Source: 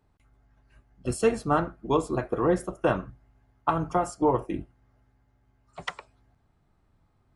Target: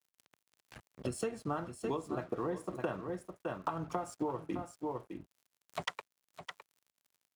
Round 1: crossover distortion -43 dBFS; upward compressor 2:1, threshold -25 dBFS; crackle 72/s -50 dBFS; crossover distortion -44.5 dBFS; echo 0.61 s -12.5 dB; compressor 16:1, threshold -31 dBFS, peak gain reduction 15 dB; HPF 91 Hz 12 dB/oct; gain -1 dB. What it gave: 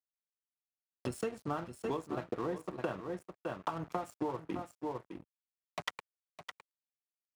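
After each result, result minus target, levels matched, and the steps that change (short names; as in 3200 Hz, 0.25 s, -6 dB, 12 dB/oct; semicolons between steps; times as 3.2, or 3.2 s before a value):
second crossover distortion: distortion +10 dB; first crossover distortion: distortion +9 dB
change: second crossover distortion -56.5 dBFS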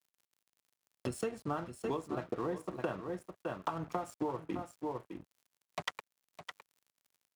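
first crossover distortion: distortion +9 dB
change: first crossover distortion -54 dBFS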